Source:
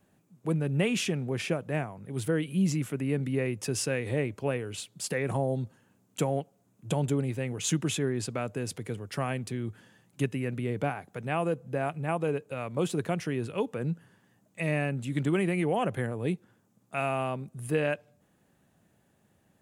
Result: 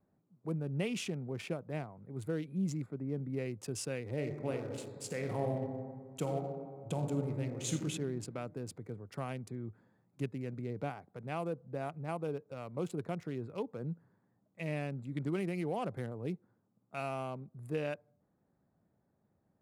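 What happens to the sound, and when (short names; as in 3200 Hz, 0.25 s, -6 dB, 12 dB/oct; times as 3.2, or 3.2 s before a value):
2.86–3.3 high shelf 2300 Hz -11.5 dB
4.14–7.75 reverb throw, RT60 1.9 s, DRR 1.5 dB
whole clip: Wiener smoothing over 15 samples; bell 1700 Hz -5.5 dB 0.23 oct; gain -8 dB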